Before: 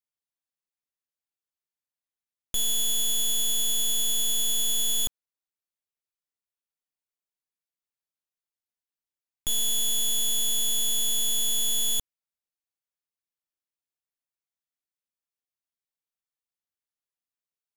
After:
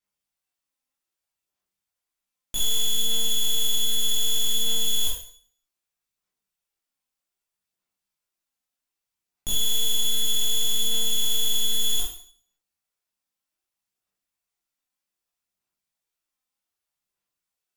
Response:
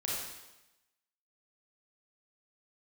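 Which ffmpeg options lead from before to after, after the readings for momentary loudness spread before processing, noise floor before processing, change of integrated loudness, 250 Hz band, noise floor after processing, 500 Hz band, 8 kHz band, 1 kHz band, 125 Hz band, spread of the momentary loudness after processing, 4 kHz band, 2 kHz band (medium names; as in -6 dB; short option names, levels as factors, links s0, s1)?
4 LU, under -85 dBFS, +0.5 dB, +2.5 dB, under -85 dBFS, +4.5 dB, -1.5 dB, +1.5 dB, no reading, 5 LU, +3.5 dB, +3.0 dB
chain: -filter_complex "[0:a]aphaser=in_gain=1:out_gain=1:delay=3.9:decay=0.45:speed=0.64:type=sinusoidal,asplit=2[s0][s1];[s1]aeval=exprs='0.0376*(abs(mod(val(0)/0.0376+3,4)-2)-1)':c=same,volume=0.447[s2];[s0][s2]amix=inputs=2:normalize=0[s3];[1:a]atrim=start_sample=2205,asetrate=83790,aresample=44100[s4];[s3][s4]afir=irnorm=-1:irlink=0,volume=1.68"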